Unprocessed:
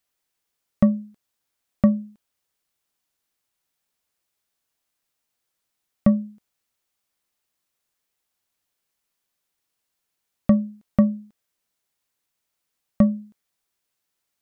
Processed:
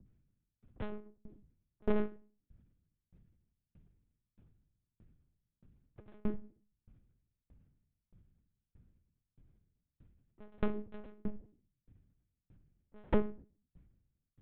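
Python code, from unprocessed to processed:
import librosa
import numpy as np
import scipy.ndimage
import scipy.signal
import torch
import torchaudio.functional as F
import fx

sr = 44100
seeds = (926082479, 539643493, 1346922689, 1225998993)

y = scipy.signal.sosfilt(scipy.signal.bessel(2, 1600.0, 'lowpass', norm='mag', fs=sr, output='sos'), x)
y = fx.low_shelf(y, sr, hz=73.0, db=10.5)
y = y * np.sin(2.0 * np.pi * 120.0 * np.arange(len(y)) / sr)
y = fx.granulator(y, sr, seeds[0], grain_ms=100.0, per_s=31.0, spray_ms=100.0, spread_st=0)
y = fx.tube_stage(y, sr, drive_db=37.0, bias=0.5)
y = fx.add_hum(y, sr, base_hz=60, snr_db=24)
y = fx.room_shoebox(y, sr, seeds[1], volume_m3=66.0, walls='mixed', distance_m=0.46)
y = fx.lpc_monotone(y, sr, seeds[2], pitch_hz=210.0, order=8)
y = fx.tremolo_decay(y, sr, direction='decaying', hz=1.6, depth_db=36)
y = y * librosa.db_to_amplitude(11.5)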